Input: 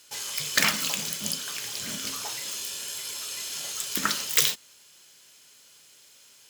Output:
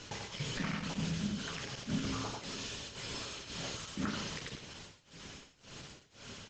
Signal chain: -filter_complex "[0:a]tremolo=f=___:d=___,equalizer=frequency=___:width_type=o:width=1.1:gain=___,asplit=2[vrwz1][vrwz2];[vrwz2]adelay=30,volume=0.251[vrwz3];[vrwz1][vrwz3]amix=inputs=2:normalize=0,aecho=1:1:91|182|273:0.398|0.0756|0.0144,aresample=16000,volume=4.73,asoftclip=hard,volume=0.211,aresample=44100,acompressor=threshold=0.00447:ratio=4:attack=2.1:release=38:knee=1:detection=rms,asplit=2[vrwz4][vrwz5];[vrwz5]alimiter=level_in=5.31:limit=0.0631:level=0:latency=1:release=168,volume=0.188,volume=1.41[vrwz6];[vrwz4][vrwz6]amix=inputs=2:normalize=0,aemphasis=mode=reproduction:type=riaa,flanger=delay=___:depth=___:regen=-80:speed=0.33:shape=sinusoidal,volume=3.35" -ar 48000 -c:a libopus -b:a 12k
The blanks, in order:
1.9, 0.99, 200, 2.5, 8.9, 4.5